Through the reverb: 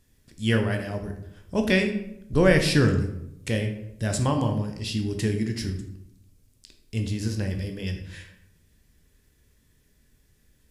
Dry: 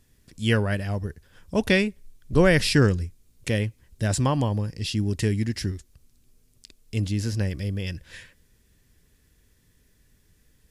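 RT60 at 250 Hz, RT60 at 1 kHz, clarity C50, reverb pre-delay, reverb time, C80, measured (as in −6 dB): 0.95 s, 0.75 s, 8.0 dB, 12 ms, 0.80 s, 10.5 dB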